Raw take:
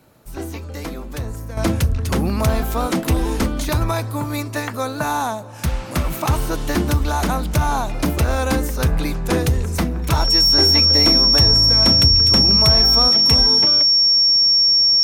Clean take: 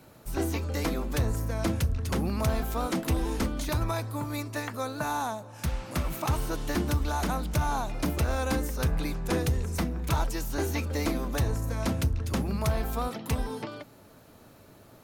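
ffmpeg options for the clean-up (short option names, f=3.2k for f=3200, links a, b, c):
-af "bandreject=f=5.5k:w=30,asetnsamples=n=441:p=0,asendcmd='1.57 volume volume -9dB',volume=0dB"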